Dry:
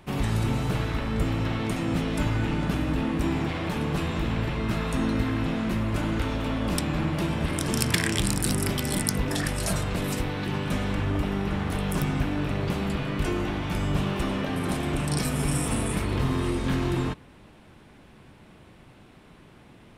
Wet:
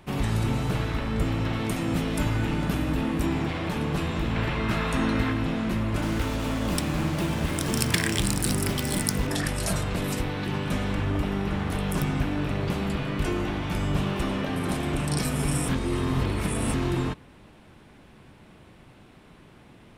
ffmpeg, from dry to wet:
-filter_complex "[0:a]asettb=1/sr,asplit=3[a][b][c];[a]atrim=end=1.534[d];[b]atrim=start=1.53:end=3.26,asetpts=PTS-STARTPTS,afade=t=in:d=0.004:c=qsin,afade=t=out:st=1.726:d=0.004:c=qsin,highshelf=f=11k:g=10.5[e];[c]atrim=start=3.256[f];[d][e]acrossfade=d=0.004:c1=hsin:c2=qsin[g];[g][f]acrossfade=d=0.004:c1=qsin:c2=hsin,asettb=1/sr,asplit=3[h][i][j];[h]atrim=end=4.354[k];[i]atrim=start=4.35:end=5.33,asetpts=PTS-STARTPTS,afade=t=in:d=0.004:c=qsin,afade=t=out:st=0.976:d=0.004:c=qsin,equalizer=f=1.7k:t=o:w=2.6:g=5[l];[j]atrim=start=5.326[m];[k][l]acrossfade=d=0.004:c1=hsin:c2=qsin[n];[n][m]acrossfade=d=0.004:c1=qsin:c2=hsin,asettb=1/sr,asplit=3[o][p][q];[o]atrim=end=6.024[r];[p]atrim=start=6.02:end=9.27,asetpts=PTS-STARTPTS,afade=t=in:d=0.004:c=qsin,afade=t=out:st=3.246:d=0.004:c=qsin,acrusher=bits=5:mix=0:aa=0.5[s];[q]atrim=start=9.266[t];[r][s]acrossfade=d=0.004:c1=hsin:c2=qsin[u];[u][t]acrossfade=d=0.004:c1=qsin:c2=hsin,asplit=3[v][w][x];[v]atrim=end=15.692[y];[w]atrim=start=15.688:end=16.742,asetpts=PTS-STARTPTS,areverse[z];[x]atrim=start=16.738[aa];[y][z]acrossfade=d=0.004:c1=hsin:c2=hsin[ab];[ab][aa]acrossfade=d=0.004:c1=hsin:c2=hsin"

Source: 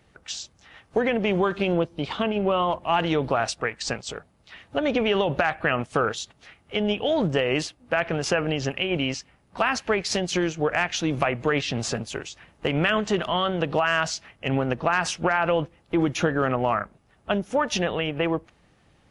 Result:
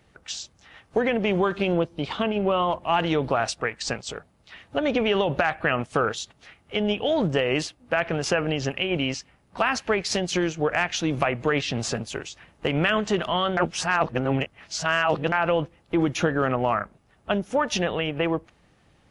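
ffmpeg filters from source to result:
-filter_complex "[0:a]asplit=3[a][b][c];[a]atrim=end=13.572[d];[b]atrim=start=13.568:end=15.322,asetpts=PTS-STARTPTS,areverse[e];[c]atrim=start=15.318[f];[d][e]acrossfade=d=0.004:c1=hsin:c2=hsin[g];[g][f]acrossfade=d=0.004:c1=hsin:c2=hsin"

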